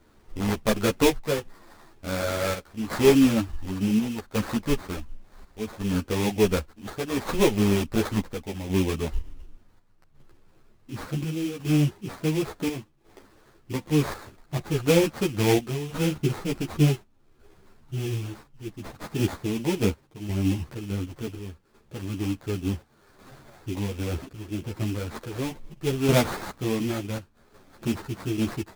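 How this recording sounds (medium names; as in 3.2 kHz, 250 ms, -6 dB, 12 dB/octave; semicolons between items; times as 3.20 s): chopped level 0.69 Hz, depth 60%, duty 75%; aliases and images of a low sample rate 2.9 kHz, jitter 20%; a shimmering, thickened sound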